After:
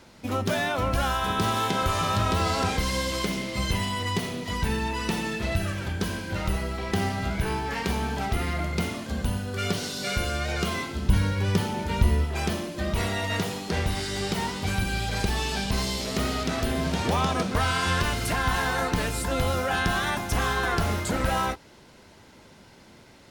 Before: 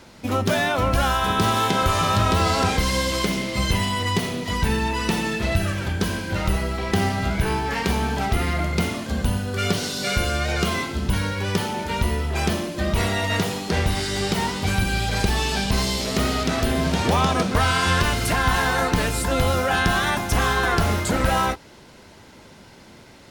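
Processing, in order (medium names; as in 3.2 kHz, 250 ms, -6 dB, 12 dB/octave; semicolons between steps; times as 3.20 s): 11.09–12.25 s: bass shelf 230 Hz +8.5 dB; trim -5 dB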